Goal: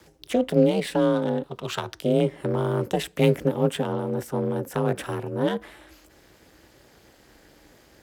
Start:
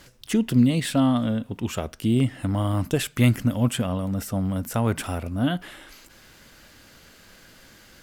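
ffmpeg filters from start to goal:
ffmpeg -i in.wav -filter_complex "[0:a]asettb=1/sr,asplit=3[link_01][link_02][link_03];[link_01]atrim=end=1.434[link_04];[link_02]atrim=start=1.43:end=2.02,asetpts=PTS-STARTPTS,afade=type=in:duration=0.004:curve=qsin,afade=type=out:start_time=0.586:duration=0.004:curve=qsin,equalizer=frequency=250:width_type=o:width=1:gain=-10,equalizer=frequency=1000:width_type=o:width=1:gain=7,equalizer=frequency=4000:width_type=o:width=1:gain=10[link_05];[link_03]atrim=start=2.016[link_06];[link_04][link_05]acrossfade=duration=0.004:curve1=hsin:curve2=qsin[link_07];[link_07][link_06]acrossfade=duration=0.004:curve1=qsin:curve2=hsin,acrossover=split=390|3000[link_08][link_09][link_10];[link_09]acompressor=threshold=-27dB:ratio=6[link_11];[link_08][link_11][link_10]amix=inputs=3:normalize=0,afreqshift=160,aeval=exprs='val(0)*sin(2*PI*130*n/s)':channel_layout=same,asplit=2[link_12][link_13];[link_13]adynamicsmooth=sensitivity=8:basefreq=1200,volume=-0.5dB[link_14];[link_12][link_14]amix=inputs=2:normalize=0,volume=-3.5dB" out.wav

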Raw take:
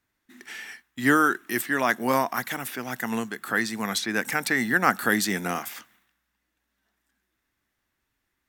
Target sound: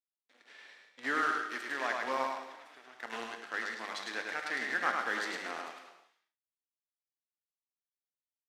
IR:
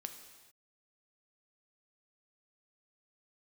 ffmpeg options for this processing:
-filter_complex "[0:a]asettb=1/sr,asplit=3[link_01][link_02][link_03];[link_01]atrim=end=2.294[link_04];[link_02]atrim=start=2.29:end=2.95,asetpts=PTS-STARTPTS,afade=type=in:duration=0.004:curve=qsin,afade=type=out:start_time=0.656:duration=0.004:curve=qsin,acompressor=threshold=-36dB:ratio=6[link_05];[link_03]atrim=start=2.946[link_06];[link_04][link_05]acrossfade=duration=0.004:curve1=hsin:curve2=qsin[link_07];[link_07][link_06]acrossfade=duration=0.004:curve1=qsin:curve2=hsin,acrusher=bits=5:dc=4:mix=0:aa=0.000001,highpass=450,lowpass=4200,aecho=1:1:105|177:0.668|0.168[link_08];[1:a]atrim=start_sample=2205,afade=type=out:start_time=0.44:duration=0.01,atrim=end_sample=19845[link_09];[link_08][link_09]afir=irnorm=-1:irlink=0,volume=-7.5dB"

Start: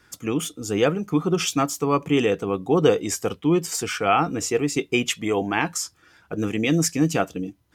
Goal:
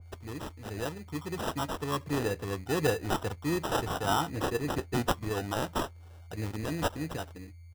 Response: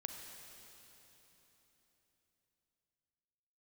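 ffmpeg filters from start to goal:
-af "firequalizer=gain_entry='entry(110,0);entry(170,-12);entry(1400,-7);entry(7700,0)':delay=0.05:min_phase=1,dynaudnorm=framelen=200:gausssize=17:maxgain=7dB,acrusher=bits=5:mode=log:mix=0:aa=0.000001,aeval=exprs='val(0)+0.01*sin(2*PI*6700*n/s)':channel_layout=same,acrusher=samples=20:mix=1:aa=0.000001,adynamicequalizer=threshold=0.0178:dfrequency=2100:dqfactor=0.7:tfrequency=2100:tqfactor=0.7:attack=5:release=100:ratio=0.375:range=1.5:mode=cutabove:tftype=highshelf,volume=-6.5dB"

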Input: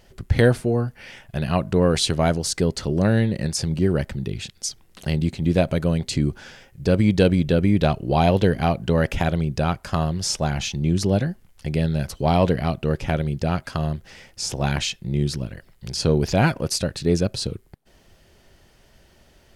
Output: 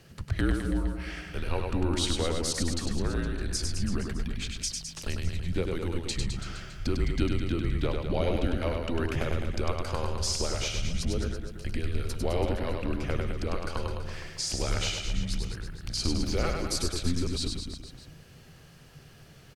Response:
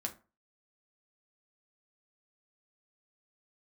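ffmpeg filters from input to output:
-af "acompressor=threshold=-33dB:ratio=2,afreqshift=-170,aecho=1:1:100|210|331|464.1|610.5:0.631|0.398|0.251|0.158|0.1"

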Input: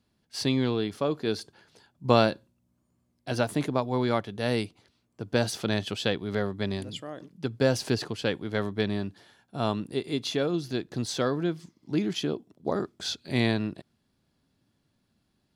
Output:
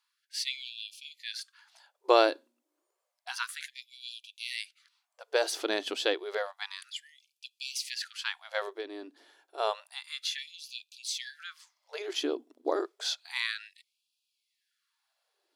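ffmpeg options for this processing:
ffmpeg -i in.wav -filter_complex "[0:a]asettb=1/sr,asplit=3[link_01][link_02][link_03];[link_01]atrim=end=8.774[link_04];[link_02]atrim=start=8.77:end=9.58,asetpts=PTS-STARTPTS,afade=type=in:duration=0.004:curve=qsin,afade=type=out:start_time=0.806:duration=0.004:curve=qsin,acrossover=split=250[link_05][link_06];[link_06]acompressor=threshold=-57dB:ratio=1.5[link_07];[link_05][link_07]amix=inputs=2:normalize=0[link_08];[link_03]atrim=start=9.576[link_09];[link_04][link_08]acrossfade=duration=0.004:curve1=hsin:curve2=qsin[link_10];[link_10][link_09]acrossfade=duration=0.004:curve1=qsin:curve2=hsin,afftfilt=real='re*gte(b*sr/1024,250*pow(2400/250,0.5+0.5*sin(2*PI*0.3*pts/sr)))':imag='im*gte(b*sr/1024,250*pow(2400/250,0.5+0.5*sin(2*PI*0.3*pts/sr)))':win_size=1024:overlap=0.75" out.wav

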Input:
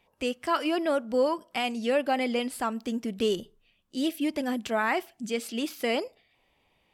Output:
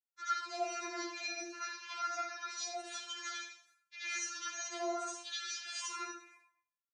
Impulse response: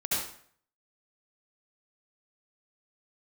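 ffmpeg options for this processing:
-filter_complex "[0:a]agate=range=-47dB:threshold=-58dB:ratio=16:detection=peak,acontrast=43,highpass=1200,aderivative,acompressor=threshold=-47dB:ratio=10,highshelf=frequency=3600:gain=-6.5,asetrate=23361,aresample=44100,atempo=1.88775,aecho=1:1:72:0.237[link_01];[1:a]atrim=start_sample=2205[link_02];[link_01][link_02]afir=irnorm=-1:irlink=0,afftfilt=real='re*4*eq(mod(b,16),0)':imag='im*4*eq(mod(b,16),0)':win_size=2048:overlap=0.75,volume=8.5dB"

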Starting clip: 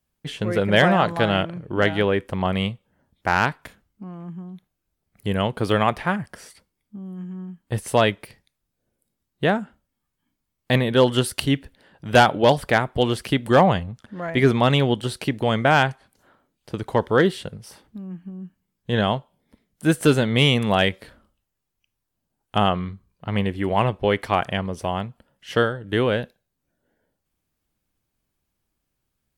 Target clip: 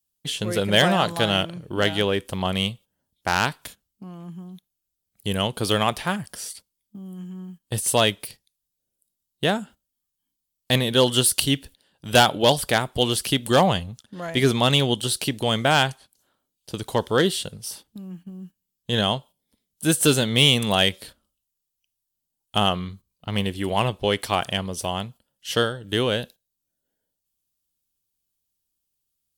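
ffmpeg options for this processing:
ffmpeg -i in.wav -af "aexciter=amount=1.9:drive=9.8:freq=2900,agate=range=-11dB:threshold=-40dB:ratio=16:detection=peak,volume=-2.5dB" out.wav

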